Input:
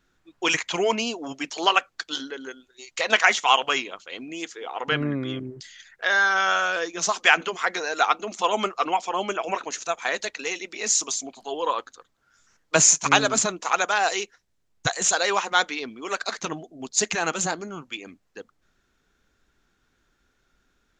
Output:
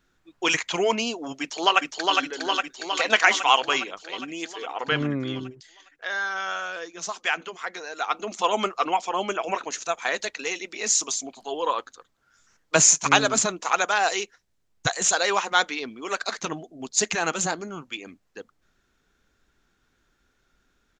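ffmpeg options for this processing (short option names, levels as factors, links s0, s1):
-filter_complex "[0:a]asplit=2[s0][s1];[s1]afade=t=in:st=1.4:d=0.01,afade=t=out:st=2.18:d=0.01,aecho=0:1:410|820|1230|1640|2050|2460|2870|3280|3690|4100|4510|4920:0.749894|0.524926|0.367448|0.257214|0.18005|0.126035|0.0882243|0.061757|0.0432299|0.0302609|0.0211827|0.0148279[s2];[s0][s2]amix=inputs=2:normalize=0,asplit=3[s3][s4][s5];[s3]atrim=end=5.56,asetpts=PTS-STARTPTS,afade=t=out:st=5.44:d=0.12:silence=0.398107[s6];[s4]atrim=start=5.56:end=8.07,asetpts=PTS-STARTPTS,volume=0.398[s7];[s5]atrim=start=8.07,asetpts=PTS-STARTPTS,afade=t=in:d=0.12:silence=0.398107[s8];[s6][s7][s8]concat=n=3:v=0:a=1"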